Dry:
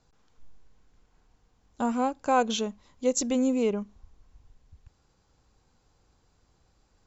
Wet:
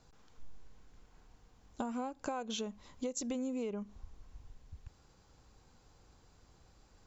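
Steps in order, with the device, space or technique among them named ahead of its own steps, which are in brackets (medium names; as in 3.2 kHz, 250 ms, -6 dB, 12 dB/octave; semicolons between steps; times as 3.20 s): serial compression, peaks first (compression 6:1, threshold -32 dBFS, peak gain reduction 14 dB; compression 2:1, threshold -42 dBFS, peak gain reduction 7 dB); trim +3 dB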